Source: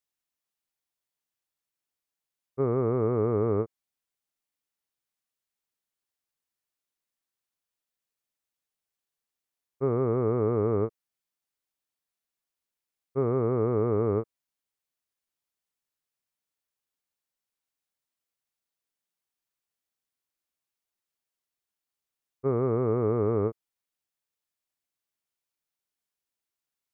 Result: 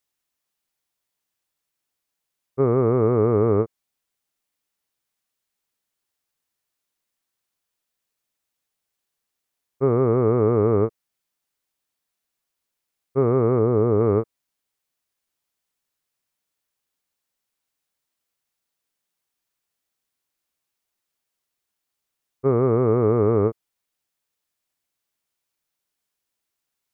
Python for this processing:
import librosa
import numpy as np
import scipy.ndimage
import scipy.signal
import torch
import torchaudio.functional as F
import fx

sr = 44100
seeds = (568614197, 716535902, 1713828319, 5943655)

y = fx.lowpass(x, sr, hz=1300.0, slope=6, at=(13.59, 14.01))
y = F.gain(torch.from_numpy(y), 7.0).numpy()